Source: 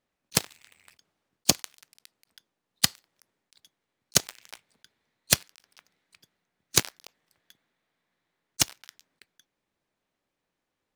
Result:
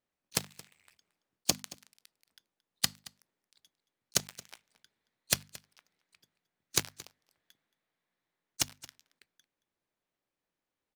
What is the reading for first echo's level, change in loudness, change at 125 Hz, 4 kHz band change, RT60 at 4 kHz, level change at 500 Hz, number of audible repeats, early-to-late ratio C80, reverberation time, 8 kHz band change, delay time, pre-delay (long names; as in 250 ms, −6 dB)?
−20.0 dB, −7.0 dB, −8.0 dB, −7.0 dB, no reverb audible, −7.0 dB, 1, no reverb audible, no reverb audible, −7.0 dB, 224 ms, no reverb audible